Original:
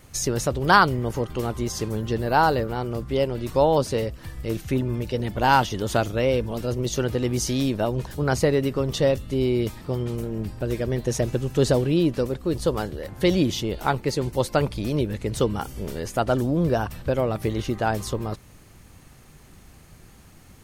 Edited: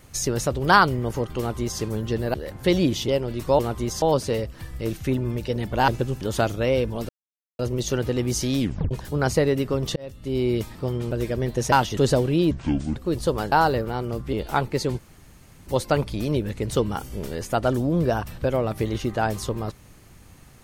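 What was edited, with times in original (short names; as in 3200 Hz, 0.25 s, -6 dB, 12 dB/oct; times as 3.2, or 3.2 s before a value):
1.38–1.81 copy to 3.66
2.34–3.15 swap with 12.91–13.65
5.52–5.77 swap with 11.22–11.55
6.65 insert silence 0.50 s
7.66 tape stop 0.31 s
9.02–9.53 fade in
10.17–10.61 cut
12.09–12.35 speed 58%
14.31 insert room tone 0.68 s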